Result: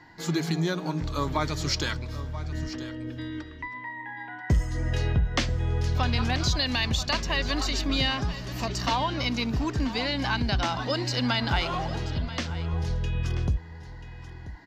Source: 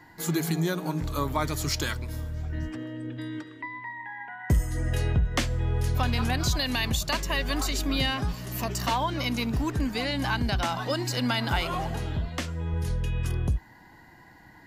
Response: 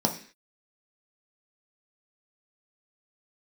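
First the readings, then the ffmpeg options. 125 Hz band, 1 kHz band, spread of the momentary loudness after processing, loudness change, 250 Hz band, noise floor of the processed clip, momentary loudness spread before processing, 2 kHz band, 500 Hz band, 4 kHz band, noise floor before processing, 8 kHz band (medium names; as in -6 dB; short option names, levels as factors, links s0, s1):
+0.5 dB, +0.5 dB, 11 LU, +0.5 dB, 0.0 dB, -42 dBFS, 10 LU, +1.0 dB, 0.0 dB, +2.5 dB, -53 dBFS, -2.5 dB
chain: -af "highshelf=f=7600:t=q:w=1.5:g=-13.5,aecho=1:1:985:0.188"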